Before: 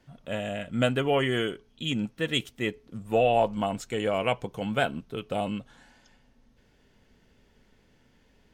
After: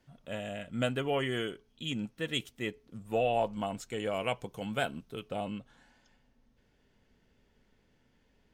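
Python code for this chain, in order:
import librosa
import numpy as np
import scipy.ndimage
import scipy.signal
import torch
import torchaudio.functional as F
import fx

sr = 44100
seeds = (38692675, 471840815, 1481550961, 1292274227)

y = fx.high_shelf(x, sr, hz=5300.0, db=fx.steps((0.0, 3.0), (4.1, 8.0), (5.28, -3.0)))
y = F.gain(torch.from_numpy(y), -6.5).numpy()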